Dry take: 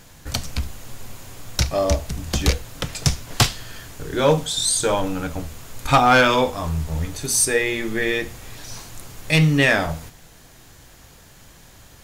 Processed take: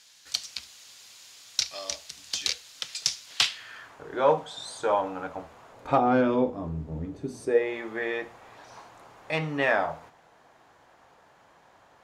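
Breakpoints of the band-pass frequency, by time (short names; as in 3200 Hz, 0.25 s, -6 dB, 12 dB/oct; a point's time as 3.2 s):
band-pass, Q 1.4
3.27 s 4500 Hz
4.03 s 840 Hz
5.67 s 840 Hz
6.17 s 290 Hz
7.34 s 290 Hz
7.77 s 860 Hz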